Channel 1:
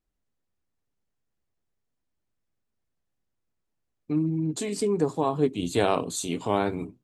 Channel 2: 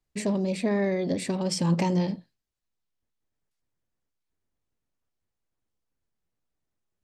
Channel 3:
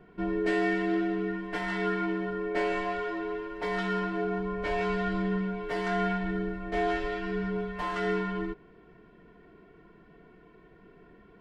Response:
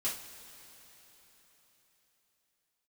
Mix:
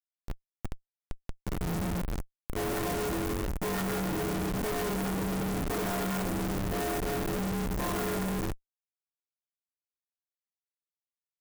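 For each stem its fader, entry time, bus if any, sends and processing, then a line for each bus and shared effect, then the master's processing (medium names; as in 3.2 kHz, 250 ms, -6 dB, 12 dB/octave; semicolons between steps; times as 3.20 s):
-4.0 dB, 0.00 s, send -10.5 dB, echo send -13.5 dB, spectral levelling over time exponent 0.6; slow attack 111 ms; compression, threshold -28 dBFS, peak gain reduction 12 dB
-16.5 dB, 0.00 s, send -15.5 dB, echo send -14 dB, graphic EQ 125/250/500/1000/4000 Hz +6/+7/-11/+6/+5 dB
+1.5 dB, 0.00 s, no send, echo send -11.5 dB, treble shelf 2 kHz +4 dB; auto duck -18 dB, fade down 0.25 s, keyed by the second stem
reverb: on, pre-delay 3 ms
echo: delay 1197 ms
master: Schmitt trigger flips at -29 dBFS; sampling jitter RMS 0.055 ms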